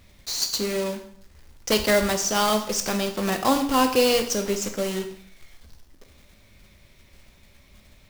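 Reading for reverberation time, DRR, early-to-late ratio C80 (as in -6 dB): 0.65 s, 6.0 dB, 13.0 dB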